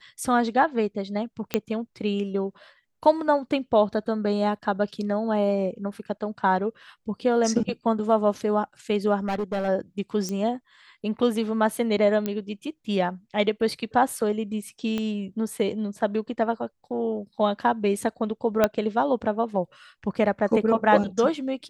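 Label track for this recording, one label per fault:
1.540000	1.540000	pop -8 dBFS
9.260000	9.690000	clipped -23 dBFS
10.290000	10.290000	pop -18 dBFS
12.260000	12.260000	pop -14 dBFS
14.980000	14.980000	pop -16 dBFS
18.640000	18.640000	pop -6 dBFS

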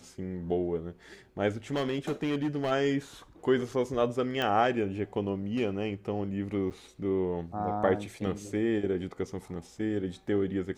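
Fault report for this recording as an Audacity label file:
1.720000	2.720000	clipped -25 dBFS
4.420000	4.420000	pop -17 dBFS
6.700000	6.710000	gap 7.8 ms

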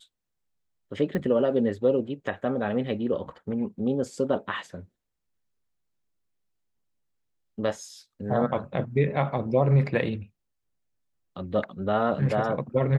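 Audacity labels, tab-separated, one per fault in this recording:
1.150000	1.150000	pop -18 dBFS

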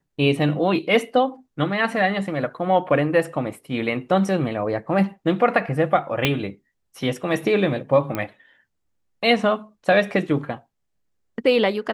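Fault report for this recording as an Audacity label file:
6.250000	6.250000	pop -4 dBFS
8.150000	8.150000	pop -12 dBFS

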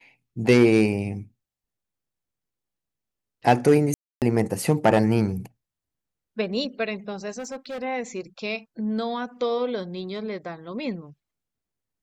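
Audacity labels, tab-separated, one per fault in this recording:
3.940000	4.220000	gap 0.278 s
7.380000	7.830000	clipped -30 dBFS

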